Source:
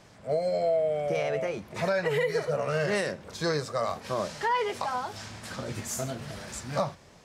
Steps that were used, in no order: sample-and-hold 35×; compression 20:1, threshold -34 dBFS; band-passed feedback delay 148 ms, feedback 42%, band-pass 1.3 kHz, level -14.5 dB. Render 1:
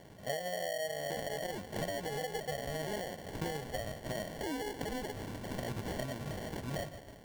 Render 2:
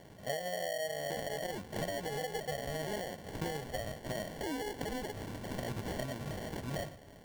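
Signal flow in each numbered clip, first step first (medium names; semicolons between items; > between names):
band-passed feedback delay > compression > sample-and-hold; compression > band-passed feedback delay > sample-and-hold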